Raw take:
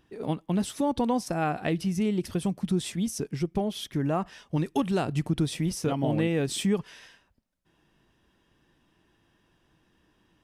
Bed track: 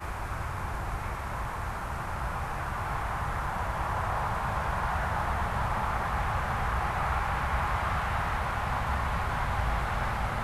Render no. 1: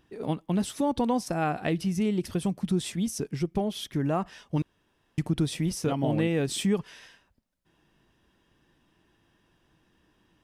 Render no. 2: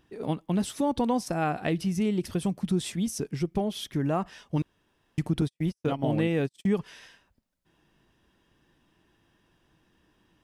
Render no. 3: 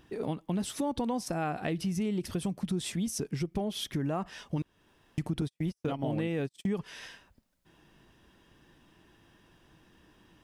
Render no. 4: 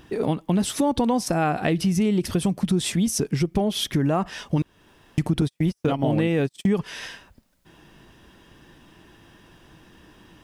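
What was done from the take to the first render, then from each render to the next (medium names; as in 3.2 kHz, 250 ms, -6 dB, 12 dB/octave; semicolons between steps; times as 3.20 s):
4.62–5.18 s: room tone
5.41–6.77 s: gate -29 dBFS, range -50 dB
in parallel at -1 dB: peak limiter -24 dBFS, peak gain reduction 10.5 dB; on the sum: compression 2:1, threshold -35 dBFS, peak gain reduction 9.5 dB
trim +10 dB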